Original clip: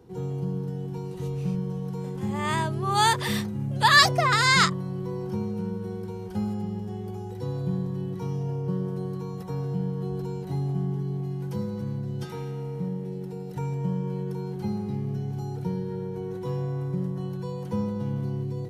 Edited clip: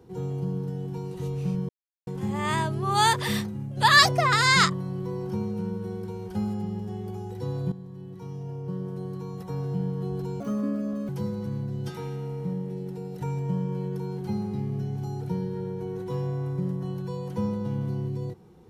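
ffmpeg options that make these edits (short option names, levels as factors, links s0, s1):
-filter_complex "[0:a]asplit=7[s0][s1][s2][s3][s4][s5][s6];[s0]atrim=end=1.69,asetpts=PTS-STARTPTS,afade=t=out:st=1.686:d=0.004:c=hsin[s7];[s1]atrim=start=1.69:end=2.07,asetpts=PTS-STARTPTS,volume=0[s8];[s2]atrim=start=2.07:end=3.77,asetpts=PTS-STARTPTS,afade=t=in:d=0.004:c=hsin,afade=t=out:st=1.3:d=0.4:silence=0.421697[s9];[s3]atrim=start=3.77:end=7.72,asetpts=PTS-STARTPTS,afade=t=in:d=0.004:c=hsin:silence=0.421697,afade=t=out:st=3.946:d=0.004:c=hsin:silence=0.211349[s10];[s4]atrim=start=7.72:end=10.404,asetpts=PTS-STARTPTS,afade=t=in:d=2.05:silence=0.211349[s11];[s5]atrim=start=10.4:end=11.44,asetpts=PTS-STARTPTS,asetrate=66591,aresample=44100[s12];[s6]atrim=start=11.436[s13];[s7][s8][s9][s10][s11]concat=n=5:v=0:a=1[s14];[s14][s12]acrossfade=d=0.004:c1=hsin:c2=hsin[s15];[s15][s13]acrossfade=d=0.004:c1=hsin:c2=hsin"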